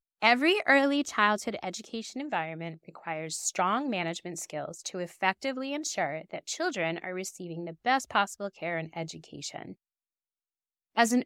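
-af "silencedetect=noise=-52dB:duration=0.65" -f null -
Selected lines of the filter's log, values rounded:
silence_start: 9.74
silence_end: 10.95 | silence_duration: 1.22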